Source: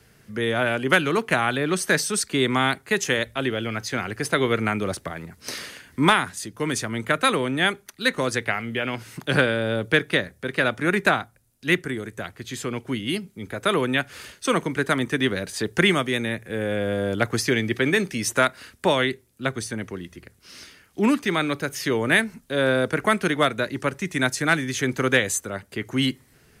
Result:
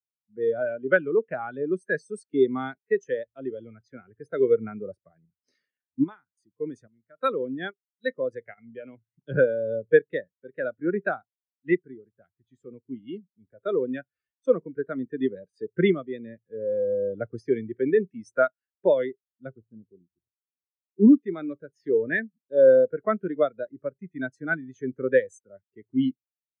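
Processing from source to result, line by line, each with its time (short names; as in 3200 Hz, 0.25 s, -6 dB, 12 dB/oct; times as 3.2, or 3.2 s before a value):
5.54–8.58 chopper 1.2 Hz, depth 65%, duty 60%
19.58–21.13 median filter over 25 samples
whole clip: dynamic EQ 500 Hz, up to +4 dB, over -35 dBFS, Q 1.9; spectral expander 2.5:1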